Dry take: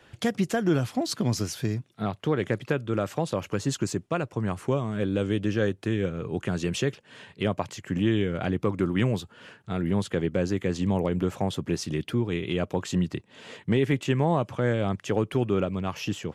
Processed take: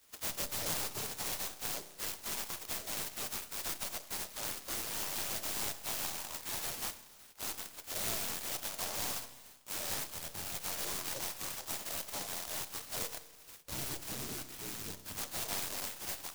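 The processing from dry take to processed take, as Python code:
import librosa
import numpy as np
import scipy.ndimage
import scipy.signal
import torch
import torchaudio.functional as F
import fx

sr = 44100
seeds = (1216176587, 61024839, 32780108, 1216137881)

p1 = scipy.signal.sosfilt(scipy.signal.butter(4, 98.0, 'highpass', fs=sr, output='sos'), x)
p2 = fx.spec_gate(p1, sr, threshold_db=-30, keep='weak')
p3 = fx.cheby_harmonics(p2, sr, harmonics=(6,), levels_db=(-18,), full_scale_db=-27.0)
p4 = fx.notch_comb(p3, sr, f0_hz=190.0, at=(6.6, 7.28))
p5 = fx.peak_eq(p4, sr, hz=1400.0, db=-11.0, octaves=2.7, at=(10.09, 10.55))
p6 = fx.spec_box(p5, sr, start_s=13.18, length_s=2.0, low_hz=470.0, high_hz=5100.0, gain_db=-9)
p7 = fx.fold_sine(p6, sr, drive_db=15, ceiling_db=-34.5)
p8 = p6 + (p7 * 10.0 ** (-10.5 / 20.0))
p9 = fx.rev_spring(p8, sr, rt60_s=1.2, pass_ms=(31,), chirp_ms=70, drr_db=9.5)
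p10 = fx.noise_mod_delay(p9, sr, seeds[0], noise_hz=5600.0, depth_ms=0.21)
y = p10 * 10.0 ** (6.0 / 20.0)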